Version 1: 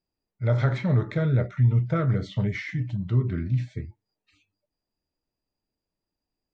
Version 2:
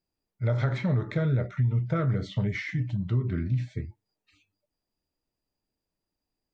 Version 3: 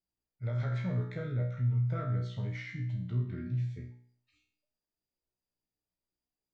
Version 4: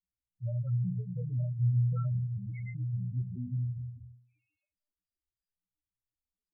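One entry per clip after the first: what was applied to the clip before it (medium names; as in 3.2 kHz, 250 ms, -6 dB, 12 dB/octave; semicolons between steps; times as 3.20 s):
compression 4:1, threshold -22 dBFS, peak gain reduction 6 dB
feedback comb 61 Hz, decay 0.55 s, harmonics all, mix 90%
gated-style reverb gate 260 ms rising, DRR 6.5 dB; loudest bins only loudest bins 4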